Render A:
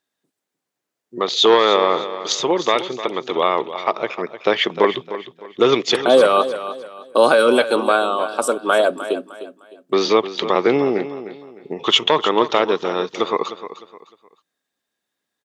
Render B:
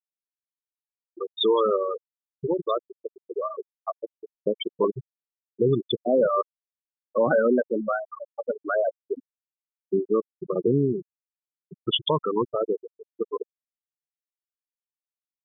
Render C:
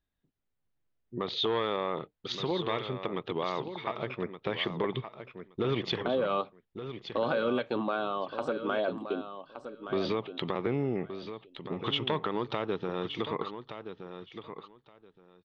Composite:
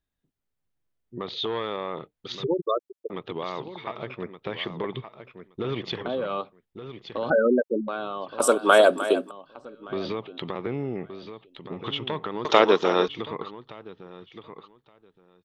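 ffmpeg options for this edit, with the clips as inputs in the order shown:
-filter_complex "[1:a]asplit=2[a][b];[0:a]asplit=2[c][d];[2:a]asplit=5[e][f][g][h][i];[e]atrim=end=2.442[j];[a]atrim=start=2.438:end=3.102[k];[f]atrim=start=3.098:end=7.302[l];[b]atrim=start=7.298:end=7.882[m];[g]atrim=start=7.878:end=8.402[n];[c]atrim=start=8.398:end=9.312[o];[h]atrim=start=9.308:end=12.452[p];[d]atrim=start=12.448:end=13.082[q];[i]atrim=start=13.078[r];[j][k]acrossfade=d=0.004:c1=hsin:c2=hsin[s];[s][l]acrossfade=d=0.004:c1=hsin:c2=hsin[t];[t][m]acrossfade=d=0.004:c1=hsin:c2=hsin[u];[u][n]acrossfade=d=0.004:c1=hsin:c2=hsin[v];[v][o]acrossfade=d=0.004:c1=hsin:c2=hsin[w];[w][p]acrossfade=d=0.004:c1=hsin:c2=hsin[x];[x][q]acrossfade=d=0.004:c1=hsin:c2=hsin[y];[y][r]acrossfade=d=0.004:c1=hsin:c2=hsin"

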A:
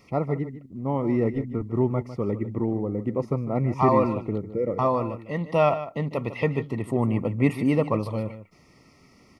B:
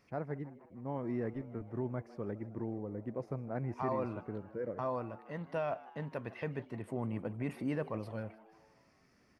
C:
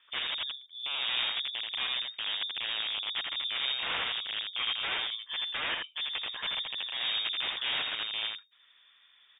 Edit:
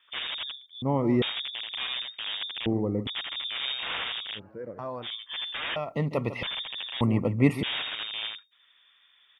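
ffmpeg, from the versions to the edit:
-filter_complex "[0:a]asplit=4[a][b][c][d];[2:a]asplit=6[e][f][g][h][i][j];[e]atrim=end=0.822[k];[a]atrim=start=0.818:end=1.222[l];[f]atrim=start=1.218:end=2.662[m];[b]atrim=start=2.658:end=3.072[n];[g]atrim=start=3.068:end=4.4[o];[1:a]atrim=start=4.34:end=5.08[p];[h]atrim=start=5.02:end=5.762[q];[c]atrim=start=5.758:end=6.432[r];[i]atrim=start=6.428:end=7.012[s];[d]atrim=start=7.008:end=7.632[t];[j]atrim=start=7.628[u];[k][l]acrossfade=d=0.004:c1=hsin:c2=hsin[v];[v][m]acrossfade=d=0.004:c1=hsin:c2=hsin[w];[w][n]acrossfade=d=0.004:c1=hsin:c2=hsin[x];[x][o]acrossfade=d=0.004:c1=hsin:c2=hsin[y];[y][p]acrossfade=d=0.06:c1=tri:c2=tri[z];[z][q]acrossfade=d=0.06:c1=tri:c2=tri[aa];[aa][r]acrossfade=d=0.004:c1=hsin:c2=hsin[ab];[ab][s]acrossfade=d=0.004:c1=hsin:c2=hsin[ac];[ac][t]acrossfade=d=0.004:c1=hsin:c2=hsin[ad];[ad][u]acrossfade=d=0.004:c1=hsin:c2=hsin"

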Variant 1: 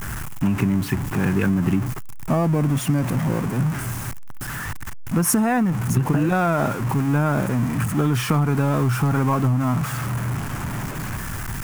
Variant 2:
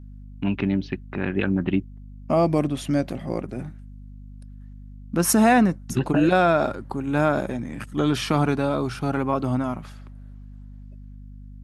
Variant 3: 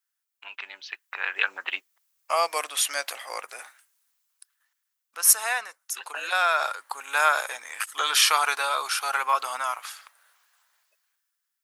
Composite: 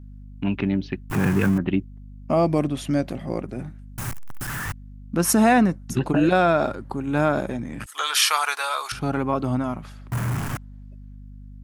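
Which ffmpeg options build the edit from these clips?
-filter_complex "[0:a]asplit=3[a][b][c];[1:a]asplit=5[d][e][f][g][h];[d]atrim=end=1.102[i];[a]atrim=start=1.098:end=1.582[j];[e]atrim=start=1.578:end=3.982[k];[b]atrim=start=3.978:end=4.722[l];[f]atrim=start=4.718:end=7.862[m];[2:a]atrim=start=7.858:end=8.922[n];[g]atrim=start=8.918:end=10.122[o];[c]atrim=start=10.118:end=10.572[p];[h]atrim=start=10.568[q];[i][j]acrossfade=d=0.004:c1=hsin:c2=hsin[r];[r][k]acrossfade=d=0.004:c1=hsin:c2=hsin[s];[s][l]acrossfade=d=0.004:c1=hsin:c2=hsin[t];[t][m]acrossfade=d=0.004:c1=hsin:c2=hsin[u];[u][n]acrossfade=d=0.004:c1=hsin:c2=hsin[v];[v][o]acrossfade=d=0.004:c1=hsin:c2=hsin[w];[w][p]acrossfade=d=0.004:c1=hsin:c2=hsin[x];[x][q]acrossfade=d=0.004:c1=hsin:c2=hsin"

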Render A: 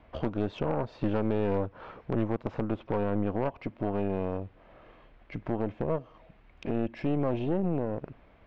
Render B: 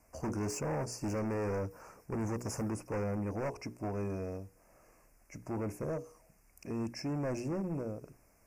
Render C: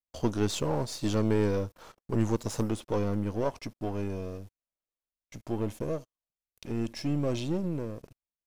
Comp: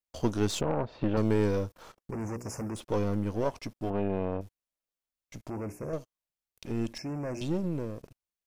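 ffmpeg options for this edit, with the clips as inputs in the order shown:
-filter_complex "[0:a]asplit=2[a][b];[1:a]asplit=3[c][d][e];[2:a]asplit=6[f][g][h][i][j][k];[f]atrim=end=0.612[l];[a]atrim=start=0.608:end=1.172[m];[g]atrim=start=1.168:end=2.112[n];[c]atrim=start=2.108:end=2.762[o];[h]atrim=start=2.758:end=3.902[p];[b]atrim=start=3.898:end=4.412[q];[i]atrim=start=4.408:end=5.502[r];[d]atrim=start=5.498:end=5.932[s];[j]atrim=start=5.928:end=6.982[t];[e]atrim=start=6.978:end=7.412[u];[k]atrim=start=7.408[v];[l][m]acrossfade=d=0.004:c1=hsin:c2=hsin[w];[w][n]acrossfade=d=0.004:c1=hsin:c2=hsin[x];[x][o]acrossfade=d=0.004:c1=hsin:c2=hsin[y];[y][p]acrossfade=d=0.004:c1=hsin:c2=hsin[z];[z][q]acrossfade=d=0.004:c1=hsin:c2=hsin[aa];[aa][r]acrossfade=d=0.004:c1=hsin:c2=hsin[ab];[ab][s]acrossfade=d=0.004:c1=hsin:c2=hsin[ac];[ac][t]acrossfade=d=0.004:c1=hsin:c2=hsin[ad];[ad][u]acrossfade=d=0.004:c1=hsin:c2=hsin[ae];[ae][v]acrossfade=d=0.004:c1=hsin:c2=hsin"

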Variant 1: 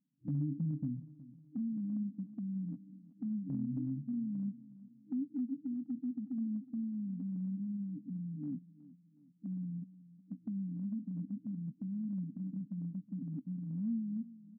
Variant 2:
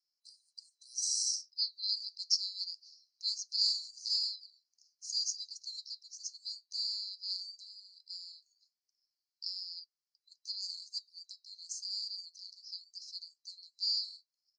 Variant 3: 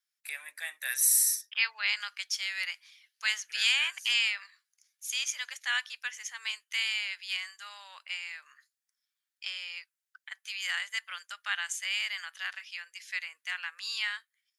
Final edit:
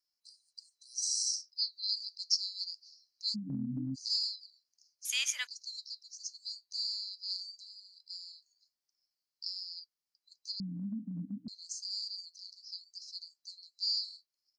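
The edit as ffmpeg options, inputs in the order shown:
-filter_complex "[0:a]asplit=2[a][b];[1:a]asplit=4[c][d][e][f];[c]atrim=end=3.36[g];[a]atrim=start=3.34:end=3.96[h];[d]atrim=start=3.94:end=5.052[i];[2:a]atrim=start=5.048:end=5.472[j];[e]atrim=start=5.468:end=10.602[k];[b]atrim=start=10.598:end=11.482[l];[f]atrim=start=11.478[m];[g][h]acrossfade=d=0.02:c1=tri:c2=tri[n];[n][i]acrossfade=d=0.02:c1=tri:c2=tri[o];[o][j]acrossfade=d=0.004:c1=hsin:c2=hsin[p];[p][k]acrossfade=d=0.004:c1=hsin:c2=hsin[q];[q][l]acrossfade=d=0.004:c1=hsin:c2=hsin[r];[r][m]acrossfade=d=0.004:c1=hsin:c2=hsin"

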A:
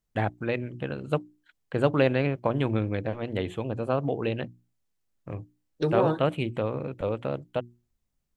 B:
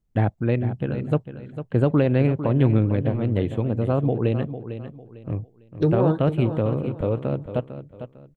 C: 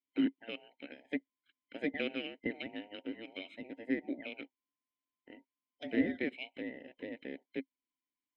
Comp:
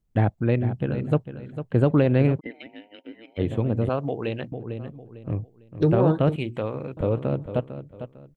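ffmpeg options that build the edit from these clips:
-filter_complex "[0:a]asplit=2[a][b];[1:a]asplit=4[c][d][e][f];[c]atrim=end=2.41[g];[2:a]atrim=start=2.37:end=3.41[h];[d]atrim=start=3.37:end=3.892[i];[a]atrim=start=3.888:end=4.522[j];[e]atrim=start=4.518:end=6.362[k];[b]atrim=start=6.358:end=6.972[l];[f]atrim=start=6.968[m];[g][h]acrossfade=d=0.04:c1=tri:c2=tri[n];[n][i]acrossfade=d=0.04:c1=tri:c2=tri[o];[o][j]acrossfade=d=0.004:c1=hsin:c2=hsin[p];[p][k]acrossfade=d=0.004:c1=hsin:c2=hsin[q];[q][l]acrossfade=d=0.004:c1=hsin:c2=hsin[r];[r][m]acrossfade=d=0.004:c1=hsin:c2=hsin"

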